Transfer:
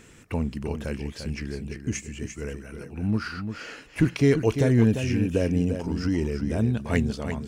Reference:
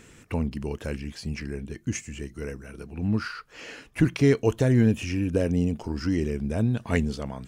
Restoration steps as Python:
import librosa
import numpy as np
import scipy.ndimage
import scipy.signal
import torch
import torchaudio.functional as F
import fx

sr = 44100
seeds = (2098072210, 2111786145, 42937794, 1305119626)

y = fx.fix_declip(x, sr, threshold_db=-11.0)
y = fx.fix_echo_inverse(y, sr, delay_ms=346, level_db=-8.0)